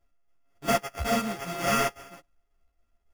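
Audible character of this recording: a buzz of ramps at a fixed pitch in blocks of 64 samples; tremolo saw down 3.6 Hz, depth 50%; aliases and images of a low sample rate 4000 Hz, jitter 0%; a shimmering, thickened sound

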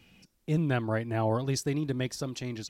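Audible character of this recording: noise floor -72 dBFS; spectral tilt -6.0 dB/oct

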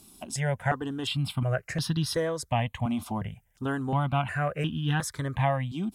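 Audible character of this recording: notches that jump at a steady rate 2.8 Hz 480–2200 Hz

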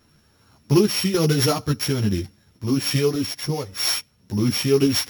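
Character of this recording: a buzz of ramps at a fixed pitch in blocks of 8 samples; random-step tremolo 3.5 Hz; a shimmering, thickened sound

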